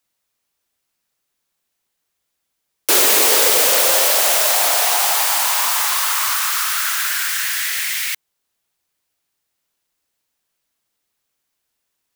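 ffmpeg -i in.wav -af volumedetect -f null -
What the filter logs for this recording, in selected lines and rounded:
mean_volume: -20.2 dB
max_volume: -1.2 dB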